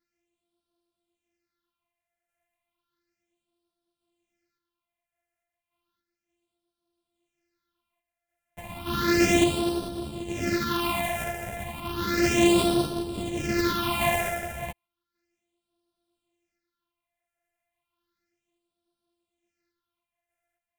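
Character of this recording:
a buzz of ramps at a fixed pitch in blocks of 128 samples
phaser sweep stages 6, 0.33 Hz, lowest notch 300–2,000 Hz
sample-and-hold tremolo
a shimmering, thickened sound

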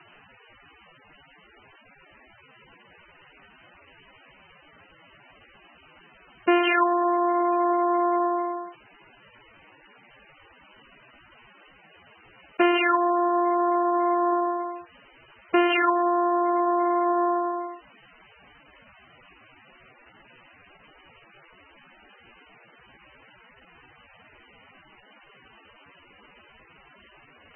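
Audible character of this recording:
a quantiser's noise floor 8 bits, dither triangular
MP3

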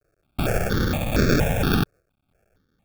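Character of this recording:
a quantiser's noise floor 12 bits, dither triangular
sample-and-hold tremolo
aliases and images of a low sample rate 1,000 Hz, jitter 0%
notches that jump at a steady rate 4.3 Hz 880–3,000 Hz

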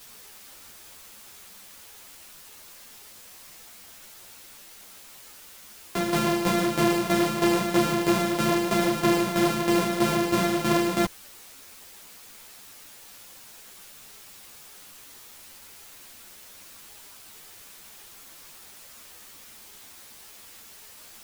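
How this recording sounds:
a buzz of ramps at a fixed pitch in blocks of 128 samples
tremolo saw down 3.1 Hz, depth 70%
a quantiser's noise floor 8 bits, dither triangular
a shimmering, thickened sound

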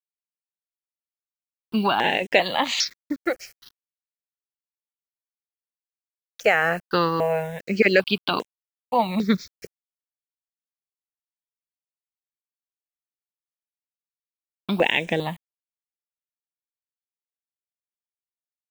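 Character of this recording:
a quantiser's noise floor 8 bits, dither none
notches that jump at a steady rate 2.5 Hz 990–4,500 Hz

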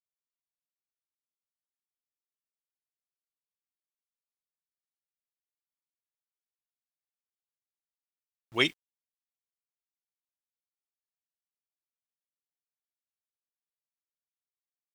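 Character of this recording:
sample-and-hold tremolo, depth 70%
a quantiser's noise floor 10 bits, dither none

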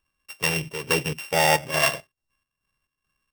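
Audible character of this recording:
a buzz of ramps at a fixed pitch in blocks of 16 samples
chopped level 2.3 Hz, depth 60%, duty 60%

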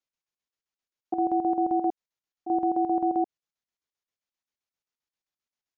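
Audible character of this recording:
chopped level 7.6 Hz, depth 65%, duty 65%
MP3

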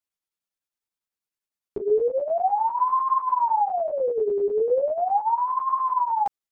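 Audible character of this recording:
chopped level 10 Hz, depth 65%, duty 80%
a shimmering, thickened sound

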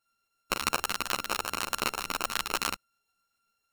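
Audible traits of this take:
a buzz of ramps at a fixed pitch in blocks of 32 samples
tremolo saw up 7.4 Hz, depth 35%
a shimmering, thickened sound

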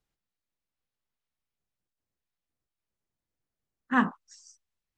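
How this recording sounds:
background noise floor −90 dBFS
spectral slope −4.0 dB per octave

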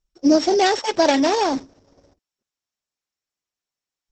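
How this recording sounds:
a buzz of ramps at a fixed pitch in blocks of 8 samples
Opus

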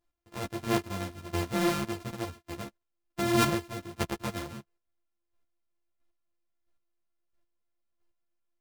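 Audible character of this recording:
a buzz of ramps at a fixed pitch in blocks of 128 samples
chopped level 1.5 Hz, depth 60%, duty 15%
a shimmering, thickened sound

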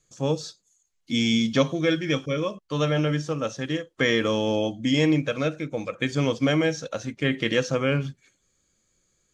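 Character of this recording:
background noise floor −71 dBFS
spectral slope −4.5 dB per octave

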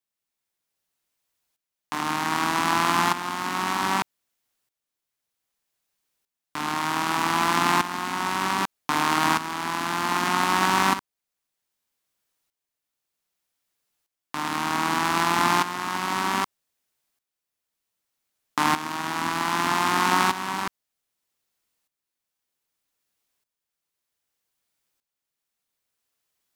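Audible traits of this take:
tremolo saw up 0.64 Hz, depth 75%

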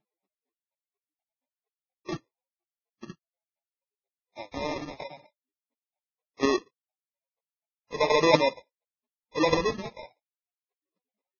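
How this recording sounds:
chopped level 4.2 Hz, depth 60%, duty 10%
phaser sweep stages 6, 1 Hz, lowest notch 670–1,800 Hz
aliases and images of a low sample rate 1,500 Hz, jitter 0%
Ogg Vorbis

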